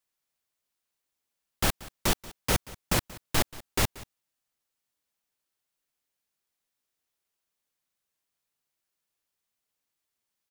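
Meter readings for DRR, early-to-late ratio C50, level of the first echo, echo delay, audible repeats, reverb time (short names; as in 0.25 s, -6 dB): none, none, -19.5 dB, 0.182 s, 1, none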